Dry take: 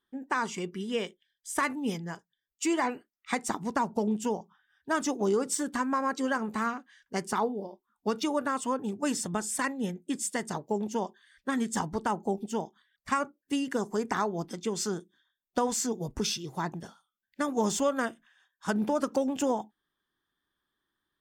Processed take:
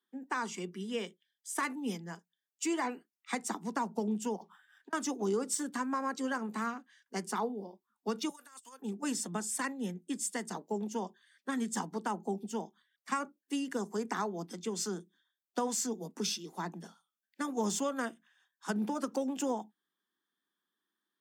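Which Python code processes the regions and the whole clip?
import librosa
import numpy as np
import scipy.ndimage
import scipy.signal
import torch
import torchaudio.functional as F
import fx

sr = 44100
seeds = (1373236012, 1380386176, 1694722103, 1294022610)

y = fx.chain(x, sr, fx.weighting(curve='A'),
    fx.over_compress(threshold_db=-49.0, ratio=-1.0),
    fx.resample_linear(factor=4), at=(4.36, 4.93))
y = fx.chain(y, sr, fx.differentiator(),
    fx.over_compress(threshold_db=-48.0, ratio=-0.5), at=(8.29, 8.82))
y = scipy.signal.sosfilt(scipy.signal.butter(16, 170.0, 'highpass', fs=sr, output='sos'), y)
y = fx.bass_treble(y, sr, bass_db=2, treble_db=3)
y = fx.notch(y, sr, hz=590.0, q=12.0)
y = F.gain(torch.from_numpy(y), -5.5).numpy()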